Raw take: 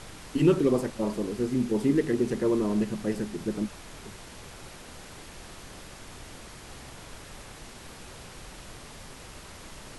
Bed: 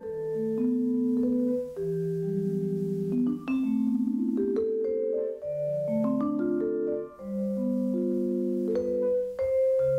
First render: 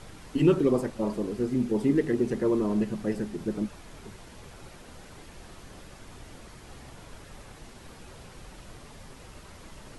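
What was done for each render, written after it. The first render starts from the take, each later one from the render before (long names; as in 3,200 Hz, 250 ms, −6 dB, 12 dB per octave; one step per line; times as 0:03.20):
broadband denoise 6 dB, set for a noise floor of −46 dBFS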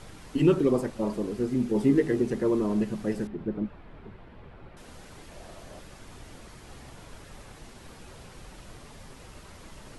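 0:01.74–0:02.22: double-tracking delay 15 ms −6 dB
0:03.27–0:04.77: high-frequency loss of the air 460 metres
0:05.31–0:05.79: parametric band 620 Hz +10.5 dB 0.47 octaves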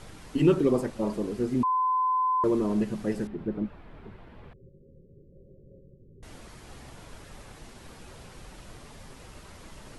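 0:01.63–0:02.44: beep over 1,020 Hz −22 dBFS
0:04.53–0:06.23: Chebyshev low-pass with heavy ripple 560 Hz, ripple 9 dB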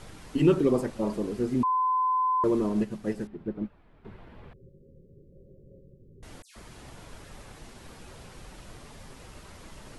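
0:02.69–0:04.05: expander for the loud parts, over −45 dBFS
0:06.42–0:06.83: all-pass dispersion lows, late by 140 ms, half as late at 2,400 Hz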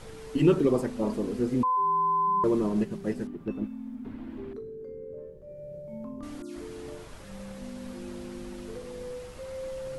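mix in bed −13 dB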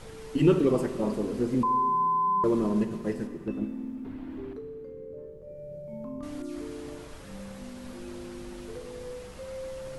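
four-comb reverb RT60 2.2 s, combs from 27 ms, DRR 9 dB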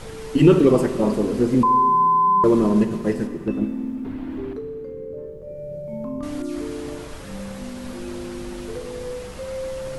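level +8.5 dB
brickwall limiter −3 dBFS, peak gain reduction 2 dB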